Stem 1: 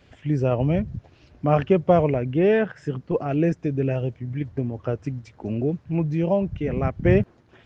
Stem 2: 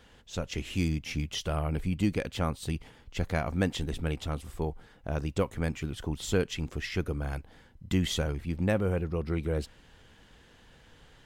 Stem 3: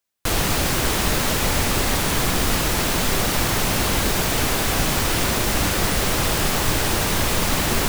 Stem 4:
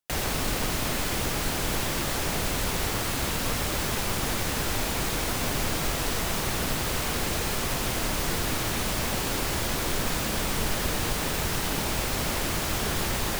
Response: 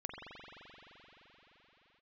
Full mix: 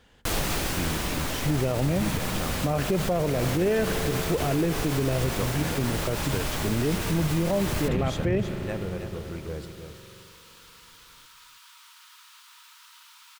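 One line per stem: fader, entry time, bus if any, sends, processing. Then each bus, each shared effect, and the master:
0.0 dB, 1.20 s, send -12.5 dB, no echo send, none
-6.0 dB, 0.00 s, send -13 dB, echo send -7.5 dB, gain riding within 5 dB 2 s
-6.0 dB, 0.00 s, send -7 dB, no echo send, auto duck -10 dB, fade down 1.20 s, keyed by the second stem
-17.5 dB, 1.30 s, no send, no echo send, rippled Chebyshev high-pass 920 Hz, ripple 6 dB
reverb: on, pre-delay 43 ms
echo: delay 320 ms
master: peak limiter -16 dBFS, peak gain reduction 12 dB

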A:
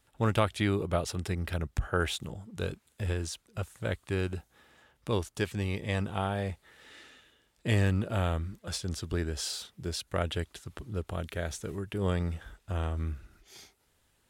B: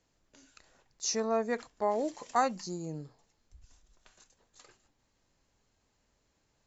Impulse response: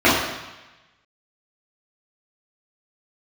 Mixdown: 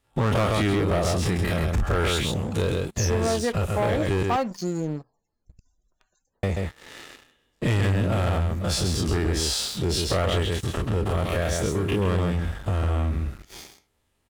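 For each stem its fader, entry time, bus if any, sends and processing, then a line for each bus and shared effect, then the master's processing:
+1.0 dB, 0.00 s, muted 4.23–6.43 s, no send, echo send -5 dB, every event in the spectrogram widened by 60 ms; band-stop 1.5 kHz, Q 9.4
+1.0 dB, 1.95 s, no send, no echo send, loudest bins only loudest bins 64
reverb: none
echo: delay 133 ms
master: treble shelf 2.5 kHz -5 dB; waveshaping leveller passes 3; compression 2.5:1, threshold -23 dBFS, peak gain reduction 6.5 dB

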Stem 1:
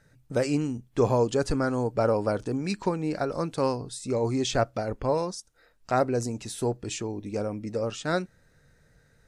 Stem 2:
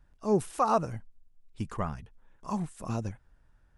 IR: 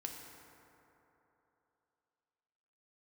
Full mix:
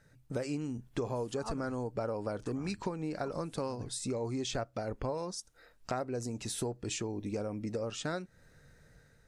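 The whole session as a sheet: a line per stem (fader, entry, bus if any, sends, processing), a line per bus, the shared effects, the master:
-3.0 dB, 0.00 s, no send, level rider gain up to 4 dB
-4.5 dB, 0.75 s, no send, slow attack 154 ms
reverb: none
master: compression 6:1, threshold -33 dBFS, peak gain reduction 15.5 dB

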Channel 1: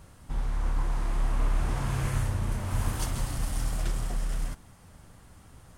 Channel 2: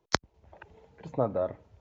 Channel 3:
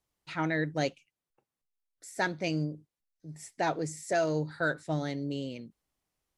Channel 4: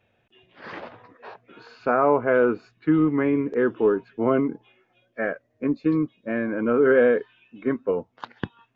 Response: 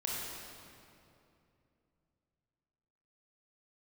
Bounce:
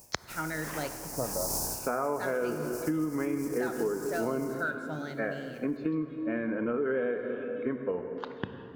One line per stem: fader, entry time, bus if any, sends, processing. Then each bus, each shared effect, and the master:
-2.0 dB, 0.00 s, no send, echo send -24 dB, spectral contrast reduction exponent 0.18; elliptic band-stop 940–5200 Hz; auto duck -14 dB, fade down 0.40 s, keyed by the third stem
-5.0 dB, 0.00 s, send -20 dB, no echo send, none
-8.5 dB, 0.00 s, send -10 dB, no echo send, peaking EQ 1.4 kHz +11 dB 0.29 oct
-6.5 dB, 0.00 s, send -8.5 dB, no echo send, none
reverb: on, RT60 2.7 s, pre-delay 23 ms
echo: delay 167 ms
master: compression 6:1, threshold -27 dBFS, peak gain reduction 10 dB

